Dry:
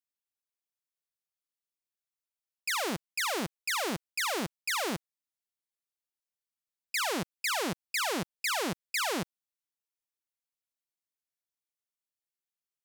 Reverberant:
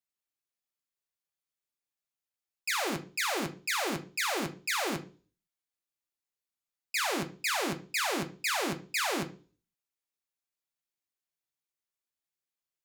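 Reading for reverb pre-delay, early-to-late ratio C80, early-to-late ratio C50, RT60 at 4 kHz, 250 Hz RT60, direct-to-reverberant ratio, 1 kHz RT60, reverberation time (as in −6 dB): 3 ms, 20.0 dB, 14.5 dB, 0.40 s, 0.50 s, 3.5 dB, 0.35 s, 0.40 s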